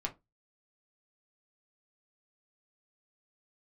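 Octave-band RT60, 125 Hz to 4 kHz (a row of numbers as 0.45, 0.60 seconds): 0.30, 0.25, 0.20, 0.20, 0.15, 0.15 seconds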